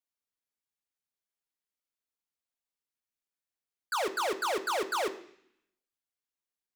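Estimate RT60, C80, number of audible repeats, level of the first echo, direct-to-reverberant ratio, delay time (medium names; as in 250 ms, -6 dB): 0.65 s, 17.0 dB, no echo, no echo, 6.0 dB, no echo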